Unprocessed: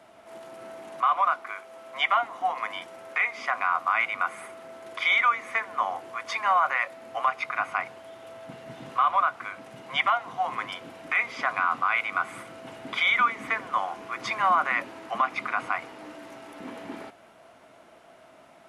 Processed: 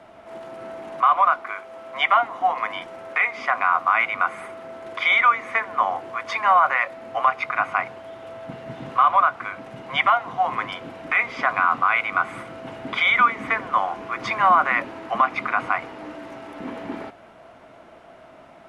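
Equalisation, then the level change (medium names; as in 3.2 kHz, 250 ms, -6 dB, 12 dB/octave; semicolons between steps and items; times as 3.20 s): low-pass 2.6 kHz 6 dB/octave; bass shelf 65 Hz +10.5 dB; +6.5 dB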